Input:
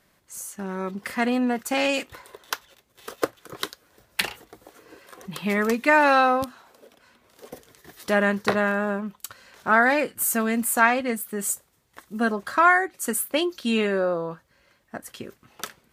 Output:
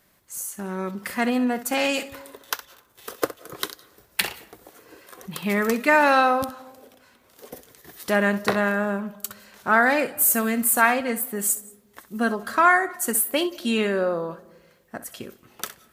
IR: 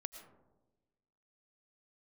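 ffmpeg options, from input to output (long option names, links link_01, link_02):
-filter_complex "[0:a]highshelf=frequency=12000:gain=12,asplit=2[link_01][link_02];[1:a]atrim=start_sample=2205,adelay=64[link_03];[link_02][link_03]afir=irnorm=-1:irlink=0,volume=-10.5dB[link_04];[link_01][link_04]amix=inputs=2:normalize=0"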